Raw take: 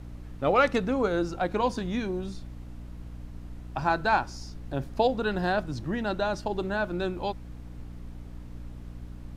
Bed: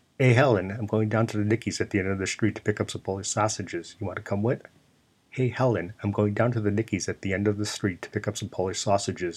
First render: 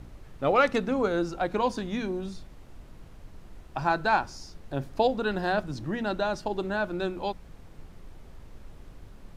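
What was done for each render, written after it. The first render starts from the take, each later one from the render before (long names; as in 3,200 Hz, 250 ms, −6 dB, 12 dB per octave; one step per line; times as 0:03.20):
hum removal 60 Hz, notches 5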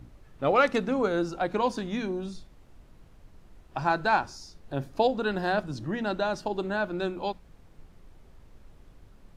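noise reduction from a noise print 6 dB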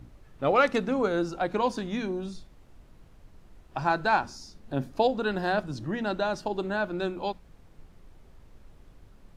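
0:04.23–0:04.92: parametric band 230 Hz +9.5 dB 0.44 octaves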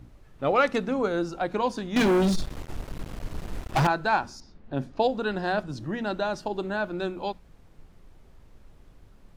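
0:01.96–0:03.87: leveller curve on the samples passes 5
0:04.40–0:05.69: low-pass that shuts in the quiet parts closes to 2,300 Hz, open at −22 dBFS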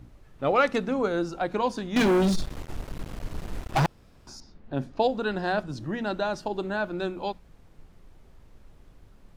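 0:03.86–0:04.27: fill with room tone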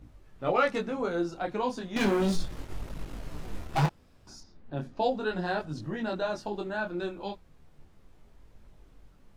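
micro pitch shift up and down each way 12 cents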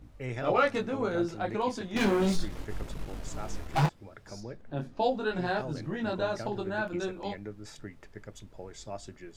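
mix in bed −17 dB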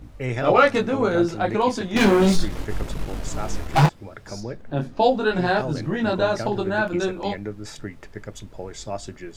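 level +9.5 dB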